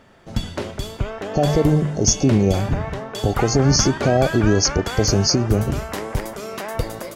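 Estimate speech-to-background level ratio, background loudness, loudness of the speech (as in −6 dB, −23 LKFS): 9.0 dB, −28.0 LKFS, −19.0 LKFS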